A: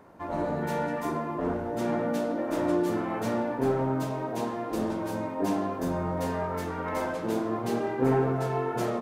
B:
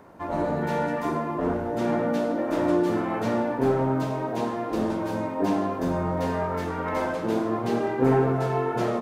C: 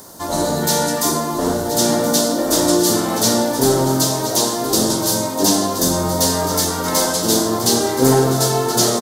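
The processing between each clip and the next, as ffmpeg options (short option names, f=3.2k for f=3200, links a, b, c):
-filter_complex "[0:a]acrossover=split=5400[a][b];[b]acompressor=threshold=-56dB:ratio=4:attack=1:release=60[c];[a][c]amix=inputs=2:normalize=0,volume=3.5dB"
-af "aecho=1:1:1024:0.282,aexciter=amount=7.3:drive=9.9:freq=3.8k,volume=6.5dB"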